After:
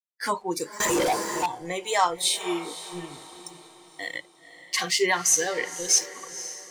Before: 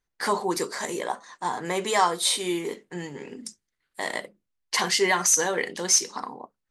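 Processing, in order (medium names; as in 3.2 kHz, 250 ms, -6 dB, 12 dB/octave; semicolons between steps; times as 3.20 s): crossover distortion -43.5 dBFS; spectral noise reduction 17 dB; echo that smears into a reverb 509 ms, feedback 45%, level -13.5 dB; 0.80–1.46 s: waveshaping leveller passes 5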